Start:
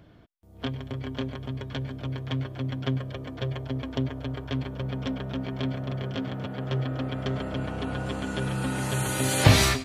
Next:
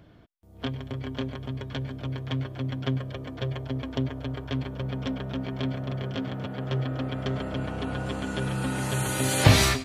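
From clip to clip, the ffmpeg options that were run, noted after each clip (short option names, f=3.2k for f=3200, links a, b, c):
-af anull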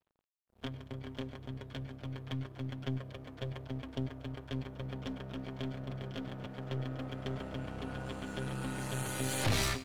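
-af "aeval=exprs='(tanh(10*val(0)+0.55)-tanh(0.55))/10':c=same,aeval=exprs='sgn(val(0))*max(abs(val(0))-0.00316,0)':c=same,volume=-6dB"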